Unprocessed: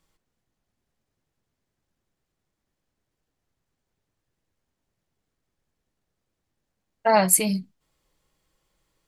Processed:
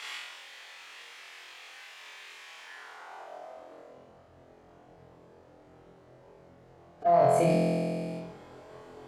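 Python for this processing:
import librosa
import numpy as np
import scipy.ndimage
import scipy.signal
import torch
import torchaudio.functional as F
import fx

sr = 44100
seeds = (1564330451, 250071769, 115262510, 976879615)

p1 = fx.low_shelf_res(x, sr, hz=390.0, db=-13.5, q=1.5)
p2 = fx.fuzz(p1, sr, gain_db=34.0, gate_db=-35.0)
p3 = p1 + F.gain(torch.from_numpy(p2), -9.0).numpy()
p4 = fx.filter_sweep_bandpass(p3, sr, from_hz=2500.0, to_hz=200.0, start_s=2.52, end_s=4.1, q=1.7)
p5 = fx.pitch_keep_formants(p4, sr, semitones=-4.5)
p6 = fx.room_flutter(p5, sr, wall_m=4.0, rt60_s=0.85)
y = fx.env_flatten(p6, sr, amount_pct=70)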